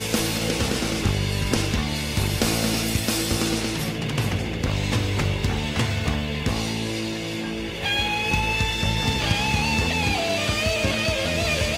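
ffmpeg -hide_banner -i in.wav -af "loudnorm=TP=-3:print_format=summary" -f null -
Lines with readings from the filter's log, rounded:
Input Integrated:    -23.1 LUFS
Input True Peak:      -7.8 dBTP
Input LRA:             2.9 LU
Input Threshold:     -33.1 LUFS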